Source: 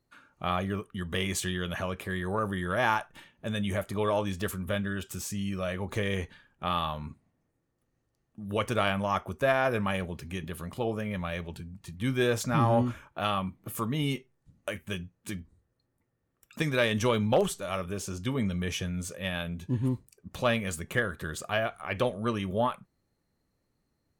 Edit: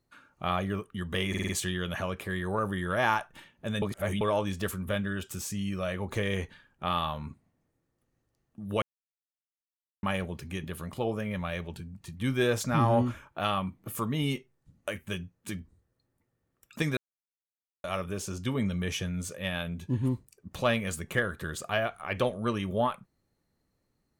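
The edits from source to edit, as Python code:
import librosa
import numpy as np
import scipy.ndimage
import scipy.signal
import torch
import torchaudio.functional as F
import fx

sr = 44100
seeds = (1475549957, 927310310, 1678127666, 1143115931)

y = fx.edit(x, sr, fx.stutter(start_s=1.29, slice_s=0.05, count=5),
    fx.reverse_span(start_s=3.62, length_s=0.39),
    fx.silence(start_s=8.62, length_s=1.21),
    fx.silence(start_s=16.77, length_s=0.87), tone=tone)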